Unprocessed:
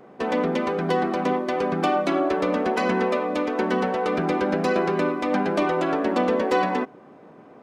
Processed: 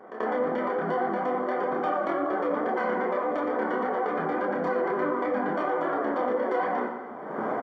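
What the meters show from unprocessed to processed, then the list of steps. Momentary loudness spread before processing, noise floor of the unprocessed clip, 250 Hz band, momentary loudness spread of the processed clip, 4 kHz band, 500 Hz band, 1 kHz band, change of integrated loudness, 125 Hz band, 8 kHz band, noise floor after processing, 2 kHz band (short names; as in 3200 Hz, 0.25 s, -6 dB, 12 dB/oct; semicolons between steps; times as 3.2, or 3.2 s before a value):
3 LU, -48 dBFS, -7.0 dB, 2 LU, under -10 dB, -3.5 dB, -2.5 dB, -4.5 dB, -11.0 dB, n/a, -38 dBFS, -4.0 dB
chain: G.711 law mismatch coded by A; recorder AGC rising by 48 dB/s; vibrato 12 Hz 56 cents; gate -28 dBFS, range -10 dB; doubler 14 ms -12.5 dB; chorus voices 6, 0.82 Hz, delay 28 ms, depth 4.7 ms; polynomial smoothing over 41 samples; pre-echo 86 ms -20 dB; plate-style reverb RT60 0.76 s, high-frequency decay 0.9×, DRR 8 dB; AM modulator 180 Hz, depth 15%; HPF 650 Hz 6 dB/oct; fast leveller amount 50%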